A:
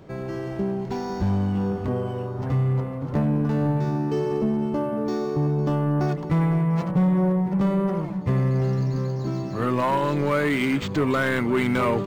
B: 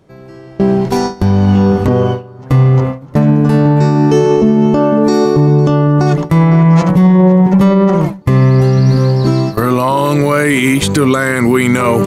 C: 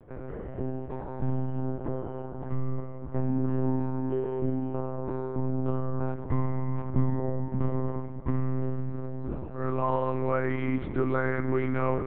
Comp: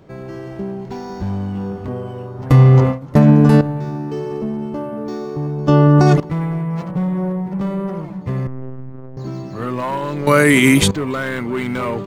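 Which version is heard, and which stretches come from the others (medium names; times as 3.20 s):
A
2.50–3.61 s: from B
5.68–6.20 s: from B
8.47–9.17 s: from C
10.27–10.91 s: from B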